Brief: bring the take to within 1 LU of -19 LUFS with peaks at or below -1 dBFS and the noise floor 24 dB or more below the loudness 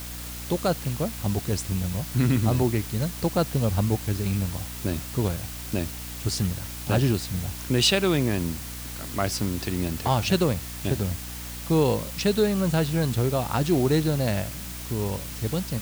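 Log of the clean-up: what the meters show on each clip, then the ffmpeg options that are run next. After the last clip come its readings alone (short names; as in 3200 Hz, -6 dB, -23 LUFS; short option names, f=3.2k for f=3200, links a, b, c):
hum 60 Hz; harmonics up to 300 Hz; hum level -38 dBFS; noise floor -36 dBFS; noise floor target -50 dBFS; loudness -26.0 LUFS; peak -8.5 dBFS; loudness target -19.0 LUFS
-> -af "bandreject=f=60:t=h:w=4,bandreject=f=120:t=h:w=4,bandreject=f=180:t=h:w=4,bandreject=f=240:t=h:w=4,bandreject=f=300:t=h:w=4"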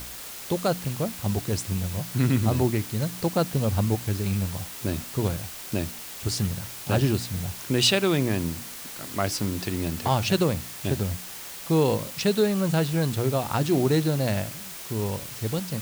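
hum none; noise floor -39 dBFS; noise floor target -50 dBFS
-> -af "afftdn=nr=11:nf=-39"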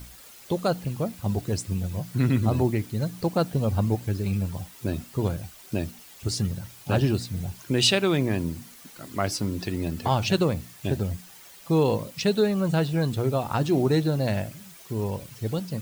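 noise floor -48 dBFS; noise floor target -51 dBFS
-> -af "afftdn=nr=6:nf=-48"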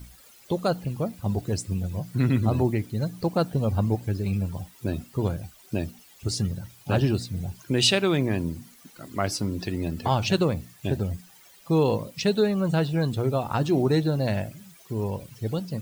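noise floor -53 dBFS; loudness -26.5 LUFS; peak -9.0 dBFS; loudness target -19.0 LUFS
-> -af "volume=7.5dB"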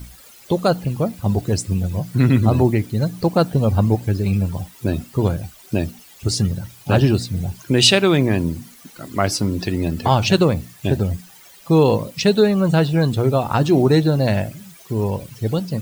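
loudness -19.0 LUFS; peak -1.5 dBFS; noise floor -46 dBFS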